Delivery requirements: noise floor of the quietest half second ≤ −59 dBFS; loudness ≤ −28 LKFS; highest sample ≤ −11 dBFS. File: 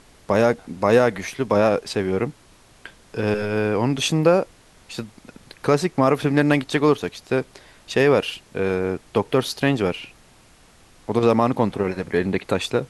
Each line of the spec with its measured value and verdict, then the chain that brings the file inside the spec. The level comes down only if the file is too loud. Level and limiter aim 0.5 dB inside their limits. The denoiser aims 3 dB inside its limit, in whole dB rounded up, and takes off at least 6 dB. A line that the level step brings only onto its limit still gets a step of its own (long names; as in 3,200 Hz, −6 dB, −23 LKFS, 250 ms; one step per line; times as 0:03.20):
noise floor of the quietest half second −52 dBFS: out of spec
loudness −21.0 LKFS: out of spec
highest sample −4.5 dBFS: out of spec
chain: level −7.5 dB